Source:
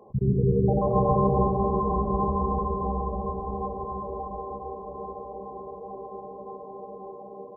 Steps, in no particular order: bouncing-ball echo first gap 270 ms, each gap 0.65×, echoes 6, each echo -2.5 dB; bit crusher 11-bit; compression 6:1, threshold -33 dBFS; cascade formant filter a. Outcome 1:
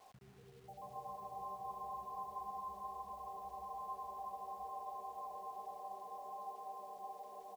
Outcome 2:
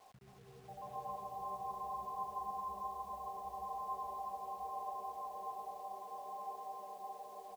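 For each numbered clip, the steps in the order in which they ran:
bouncing-ball echo > compression > cascade formant filter > bit crusher; compression > cascade formant filter > bit crusher > bouncing-ball echo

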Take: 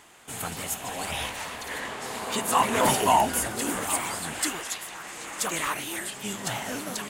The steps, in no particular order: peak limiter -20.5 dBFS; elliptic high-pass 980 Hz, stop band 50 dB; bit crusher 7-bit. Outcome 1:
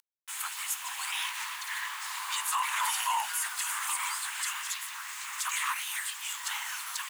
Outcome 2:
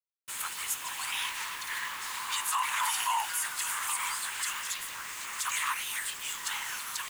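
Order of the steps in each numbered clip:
bit crusher > elliptic high-pass > peak limiter; elliptic high-pass > bit crusher > peak limiter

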